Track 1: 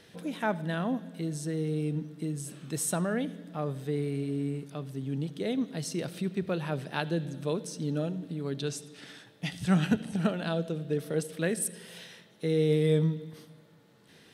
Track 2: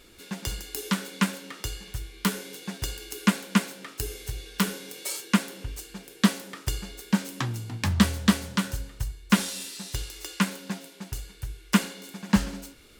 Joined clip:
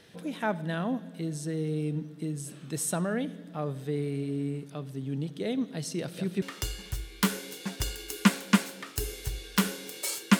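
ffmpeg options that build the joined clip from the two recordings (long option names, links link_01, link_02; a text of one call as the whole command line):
ffmpeg -i cue0.wav -i cue1.wav -filter_complex "[0:a]asettb=1/sr,asplit=3[link_01][link_02][link_03];[link_01]atrim=end=6.014[link_04];[link_02]atrim=start=6.01:end=6.42,asetpts=PTS-STARTPTS,afade=type=in:duration=0.004:curve=qsin,afade=type=out:start_time=0.406:duration=0.004:curve=qsin,aecho=1:1:173:0.501,atrim=end_sample=18081[link_05];[link_03]atrim=start=6.416[link_06];[link_04][link_05]acrossfade=duration=0.004:curve1=hsin:curve2=qsin[link_07];[link_07][link_06]acrossfade=duration=0.004:curve1=qsin:curve2=hsin,apad=whole_dur=10.39,atrim=end=10.39,atrim=end=6.422[link_08];[1:a]atrim=start=1.438:end=5.41[link_09];[link_08][link_09]acrossfade=duration=0.004:curve1=hsin:curve2=hsin" out.wav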